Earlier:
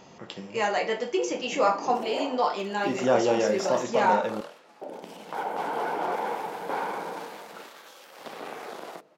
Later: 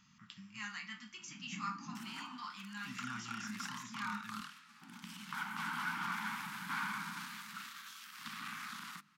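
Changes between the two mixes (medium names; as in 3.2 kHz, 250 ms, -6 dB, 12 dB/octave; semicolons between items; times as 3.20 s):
speech -11.5 dB; master: add Chebyshev band-stop 220–1200 Hz, order 3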